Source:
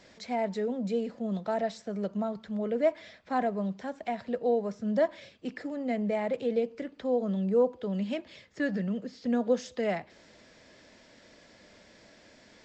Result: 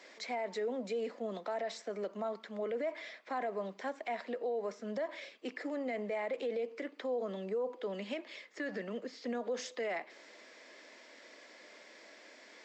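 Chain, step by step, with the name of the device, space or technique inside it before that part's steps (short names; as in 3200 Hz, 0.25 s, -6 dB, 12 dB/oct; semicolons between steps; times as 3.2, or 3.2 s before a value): laptop speaker (HPF 300 Hz 24 dB/oct; bell 1100 Hz +4 dB 0.28 oct; bell 2100 Hz +5.5 dB 0.46 oct; limiter -29 dBFS, peak gain reduction 13.5 dB)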